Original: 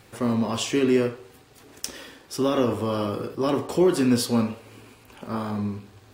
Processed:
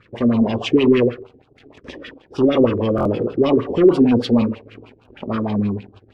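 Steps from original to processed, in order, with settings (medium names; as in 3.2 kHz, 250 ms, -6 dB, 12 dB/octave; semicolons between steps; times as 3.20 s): waveshaping leveller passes 2; LFO low-pass sine 6.4 Hz 320–3200 Hz; buffer glitch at 2.96 s, samples 1024, times 3; step-sequenced notch 9 Hz 790–2000 Hz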